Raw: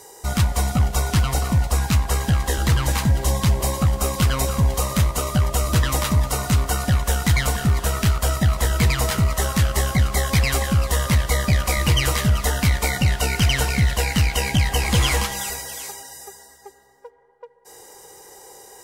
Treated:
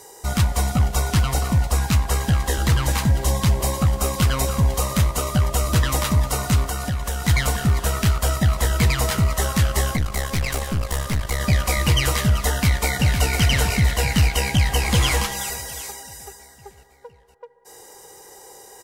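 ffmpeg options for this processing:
ffmpeg -i in.wav -filter_complex "[0:a]asettb=1/sr,asplit=3[link_01][link_02][link_03];[link_01]atrim=end=6.674[link_04];[link_02]atrim=start=6.67:end=7.28,asetpts=PTS-STARTPTS,afade=type=in:duration=0.004:curve=qsin,afade=type=out:start_time=0.606:duration=0.004:curve=qsin,acompressor=threshold=-23dB:ratio=2.5:attack=3.2:release=140:knee=1:detection=peak[link_05];[link_03]atrim=start=7.276[link_06];[link_04][link_05]acrossfade=duration=0.004:curve1=hsin:curve2=qsin[link_07];[link_07][link_06]acrossfade=duration=0.004:curve1=qsin:curve2=hsin,asettb=1/sr,asplit=3[link_08][link_09][link_10];[link_08]atrim=end=9.964[link_11];[link_09]atrim=start=9.96:end=11.41,asetpts=PTS-STARTPTS,afade=type=in:duration=0.004:curve=qsin,afade=type=out:start_time=1.446:duration=0.004:curve=qsin,aeval=exprs='(tanh(7.94*val(0)+0.75)-tanh(0.75))/7.94':channel_layout=same[link_12];[link_10]atrim=start=11.406[link_13];[link_11][link_12]acrossfade=duration=0.004:curve1=hsin:curve2=qsin[link_14];[link_14][link_13]acrossfade=duration=0.004:curve1=qsin:curve2=hsin,asplit=2[link_15][link_16];[link_16]afade=type=in:start_time=12.48:duration=0.01,afade=type=out:start_time=13.26:duration=0.01,aecho=0:1:510|1020|1530|2040|2550|3060|3570|4080:0.473151|0.283891|0.170334|0.102201|0.0613204|0.0367922|0.0220753|0.0132452[link_17];[link_15][link_17]amix=inputs=2:normalize=0" out.wav

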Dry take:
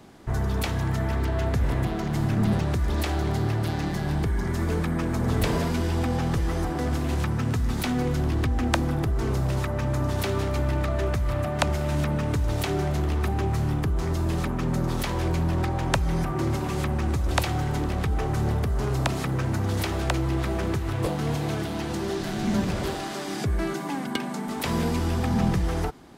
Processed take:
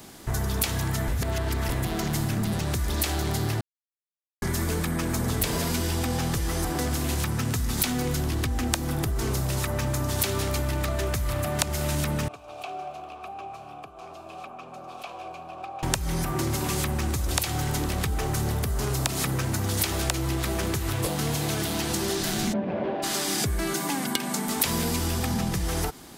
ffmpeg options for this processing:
ffmpeg -i in.wav -filter_complex "[0:a]asettb=1/sr,asplit=3[link_01][link_02][link_03];[link_01]atrim=end=12.284[link_04];[link_02]atrim=start=12.28:end=15.83,asetpts=PTS-STARTPTS,afade=type=in:duration=0.004:curve=qsin,afade=type=out:start_time=3.546:duration=0.004:curve=qsin,asplit=3[link_05][link_06][link_07];[link_05]bandpass=frequency=730:width_type=q:width=8,volume=0dB[link_08];[link_06]bandpass=frequency=1090:width_type=q:width=8,volume=-6dB[link_09];[link_07]bandpass=frequency=2440:width_type=q:width=8,volume=-9dB[link_10];[link_08][link_09][link_10]amix=inputs=3:normalize=0[link_11];[link_03]atrim=start=15.826[link_12];[link_04][link_11]acrossfade=duration=0.004:curve1=hsin:curve2=qsin[link_13];[link_13][link_12]acrossfade=duration=0.004:curve1=qsin:curve2=hsin,asplit=3[link_14][link_15][link_16];[link_14]afade=type=out:start_time=22.52:duration=0.02[link_17];[link_15]highpass=210,equalizer=frequency=220:width_type=q:width=4:gain=5,equalizer=frequency=590:width_type=q:width=4:gain=8,equalizer=frequency=1300:width_type=q:width=4:gain=-10,equalizer=frequency=1900:width_type=q:width=4:gain=-7,lowpass=frequency=2000:width=0.5412,lowpass=frequency=2000:width=1.3066,afade=type=in:start_time=22.52:duration=0.02,afade=type=out:start_time=23.02:duration=0.02[link_18];[link_16]afade=type=in:start_time=23.02:duration=0.02[link_19];[link_17][link_18][link_19]amix=inputs=3:normalize=0,asplit=5[link_20][link_21][link_22][link_23][link_24];[link_20]atrim=end=1.082[link_25];[link_21]atrim=start=1.078:end=1.692,asetpts=PTS-STARTPTS,areverse[link_26];[link_22]atrim=start=1.688:end=3.61,asetpts=PTS-STARTPTS,afade=type=out:start_time=1.918:duration=0.004:curve=hsin[link_27];[link_23]atrim=start=3.61:end=4.42,asetpts=PTS-STARTPTS,volume=0[link_28];[link_24]atrim=start=4.42,asetpts=PTS-STARTPTS,afade=type=in:duration=0.004:curve=hsin[link_29];[link_25][link_26]acrossfade=duration=0.004:curve1=hsin:curve2=hsin[link_30];[link_27][link_28][link_29]concat=n=3:v=0:a=1[link_31];[link_30][link_31]acrossfade=duration=0.004:curve1=hsin:curve2=hsin,highshelf=frequency=2800:gain=11,acompressor=threshold=-25dB:ratio=6,highshelf=frequency=9200:gain=8.5,volume=1.5dB" out.wav

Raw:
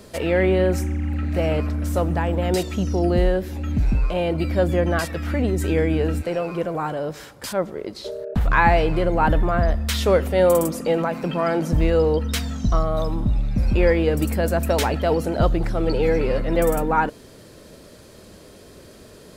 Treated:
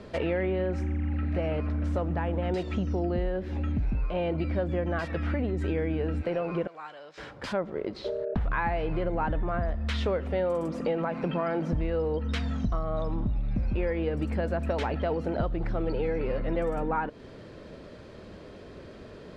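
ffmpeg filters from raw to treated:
ffmpeg -i in.wav -filter_complex "[0:a]asettb=1/sr,asplit=3[link_01][link_02][link_03];[link_01]atrim=end=6.674[link_04];[link_02]atrim=start=6.67:end=7.18,asetpts=PTS-STARTPTS,afade=type=in:duration=0.004:curve=qsin,afade=type=out:start_time=0.506:duration=0.004:curve=qsin,bandpass=frequency=5900:width_type=q:width=0.88[link_05];[link_03]atrim=start=7.176[link_06];[link_04][link_05]acrossfade=duration=0.004:curve1=hsin:curve2=qsin[link_07];[link_07][link_06]acrossfade=duration=0.004:curve1=qsin:curve2=hsin,lowpass=2900,acompressor=threshold=-26dB:ratio=5" out.wav

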